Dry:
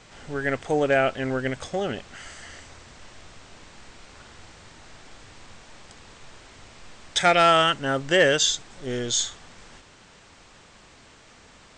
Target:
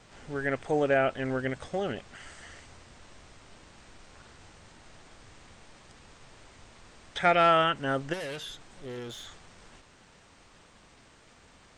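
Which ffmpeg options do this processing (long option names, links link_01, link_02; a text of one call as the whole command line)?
ffmpeg -i in.wav -filter_complex "[0:a]acrossover=split=3000[link_01][link_02];[link_02]acompressor=threshold=-42dB:ratio=4:attack=1:release=60[link_03];[link_01][link_03]amix=inputs=2:normalize=0,asplit=3[link_04][link_05][link_06];[link_04]afade=type=out:start_time=8.12:duration=0.02[link_07];[link_05]aeval=exprs='(tanh(35.5*val(0)+0.1)-tanh(0.1))/35.5':channel_layout=same,afade=type=in:start_time=8.12:duration=0.02,afade=type=out:start_time=9.26:duration=0.02[link_08];[link_06]afade=type=in:start_time=9.26:duration=0.02[link_09];[link_07][link_08][link_09]amix=inputs=3:normalize=0,volume=-3.5dB" -ar 48000 -c:a libopus -b:a 32k out.opus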